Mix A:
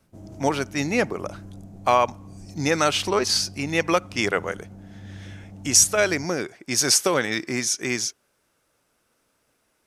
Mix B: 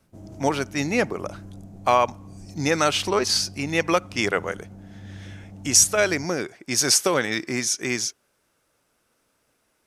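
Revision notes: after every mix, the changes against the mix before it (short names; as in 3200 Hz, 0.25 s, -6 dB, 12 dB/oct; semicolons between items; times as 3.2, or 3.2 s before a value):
none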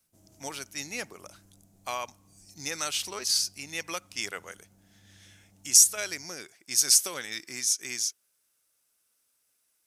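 master: add pre-emphasis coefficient 0.9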